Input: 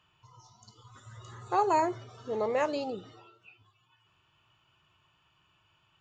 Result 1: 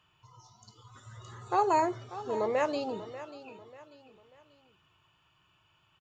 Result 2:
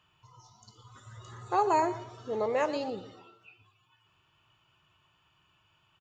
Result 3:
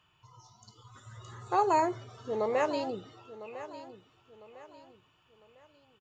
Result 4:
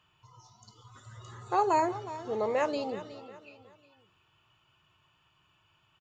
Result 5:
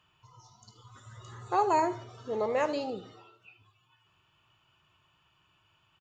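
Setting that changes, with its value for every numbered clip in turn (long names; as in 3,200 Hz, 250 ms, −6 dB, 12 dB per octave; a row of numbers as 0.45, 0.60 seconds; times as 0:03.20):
repeating echo, delay time: 590, 118, 1,003, 366, 76 milliseconds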